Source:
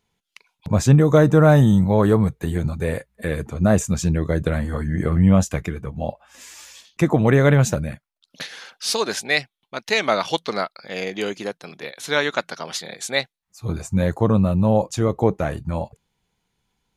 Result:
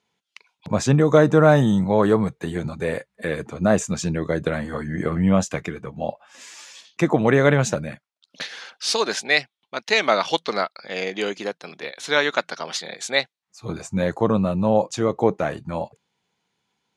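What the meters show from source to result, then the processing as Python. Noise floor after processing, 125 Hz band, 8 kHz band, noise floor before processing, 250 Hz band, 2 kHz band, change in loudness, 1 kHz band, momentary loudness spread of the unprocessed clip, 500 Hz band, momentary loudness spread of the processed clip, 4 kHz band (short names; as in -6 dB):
-81 dBFS, -6.0 dB, -1.0 dB, -81 dBFS, -2.0 dB, +1.5 dB, -1.5 dB, +1.0 dB, 17 LU, +0.5 dB, 17 LU, +1.0 dB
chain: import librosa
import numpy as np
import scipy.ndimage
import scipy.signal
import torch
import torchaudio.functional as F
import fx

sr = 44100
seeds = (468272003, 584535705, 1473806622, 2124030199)

y = fx.bandpass_edges(x, sr, low_hz=120.0, high_hz=7200.0)
y = fx.low_shelf(y, sr, hz=180.0, db=-8.0)
y = F.gain(torch.from_numpy(y), 1.5).numpy()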